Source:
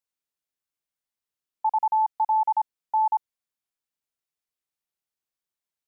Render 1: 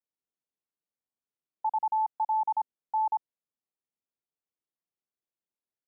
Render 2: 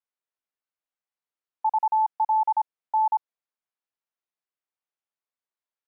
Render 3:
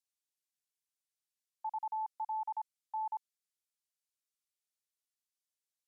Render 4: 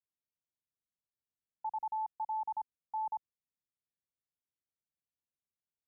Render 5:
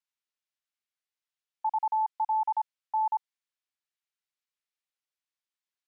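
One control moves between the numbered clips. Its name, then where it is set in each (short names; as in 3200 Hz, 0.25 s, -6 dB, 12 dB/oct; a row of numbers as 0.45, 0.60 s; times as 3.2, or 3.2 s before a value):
band-pass, frequency: 290, 950, 7700, 100, 2600 Hz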